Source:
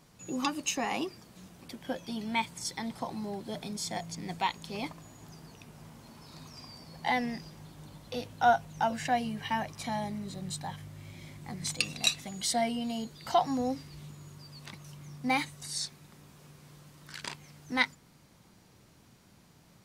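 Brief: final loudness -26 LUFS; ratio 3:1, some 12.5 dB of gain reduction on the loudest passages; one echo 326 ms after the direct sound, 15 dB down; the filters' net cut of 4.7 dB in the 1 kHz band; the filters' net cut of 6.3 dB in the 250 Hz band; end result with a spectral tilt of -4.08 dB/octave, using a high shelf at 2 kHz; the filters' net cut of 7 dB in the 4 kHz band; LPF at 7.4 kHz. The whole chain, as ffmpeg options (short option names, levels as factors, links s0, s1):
-af "lowpass=7400,equalizer=f=250:t=o:g=-7,equalizer=f=1000:t=o:g=-5.5,highshelf=f=2000:g=-3.5,equalizer=f=4000:t=o:g=-4.5,acompressor=threshold=0.00891:ratio=3,aecho=1:1:326:0.178,volume=9.44"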